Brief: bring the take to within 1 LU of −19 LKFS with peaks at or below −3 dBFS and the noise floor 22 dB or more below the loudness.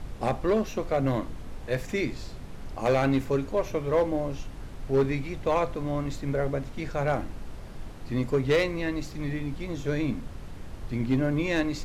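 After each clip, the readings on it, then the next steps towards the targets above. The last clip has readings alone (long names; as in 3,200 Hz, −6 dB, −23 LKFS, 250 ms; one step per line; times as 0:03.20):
share of clipped samples 0.6%; peaks flattened at −17.0 dBFS; background noise floor −41 dBFS; target noise floor −51 dBFS; integrated loudness −28.5 LKFS; sample peak −17.0 dBFS; target loudness −19.0 LKFS
→ clipped peaks rebuilt −17 dBFS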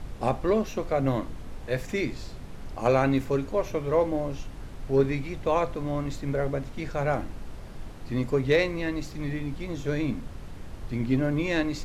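share of clipped samples 0.0%; background noise floor −41 dBFS; target noise floor −50 dBFS
→ noise reduction from a noise print 9 dB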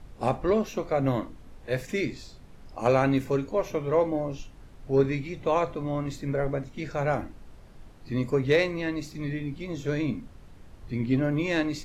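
background noise floor −49 dBFS; target noise floor −50 dBFS
→ noise reduction from a noise print 6 dB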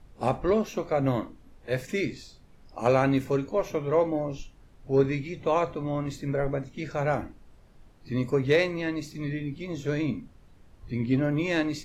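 background noise floor −55 dBFS; integrated loudness −28.0 LKFS; sample peak −10.0 dBFS; target loudness −19.0 LKFS
→ level +9 dB
brickwall limiter −3 dBFS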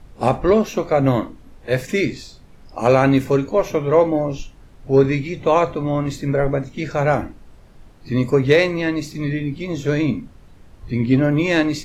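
integrated loudness −19.0 LKFS; sample peak −3.0 dBFS; background noise floor −46 dBFS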